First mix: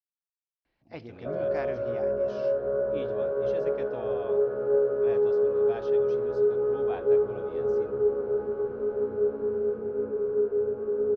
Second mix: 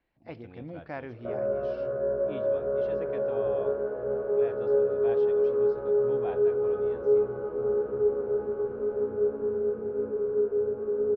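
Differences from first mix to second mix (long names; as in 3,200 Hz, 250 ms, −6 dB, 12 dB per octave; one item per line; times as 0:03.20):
speech: entry −0.65 s
master: add high-frequency loss of the air 190 metres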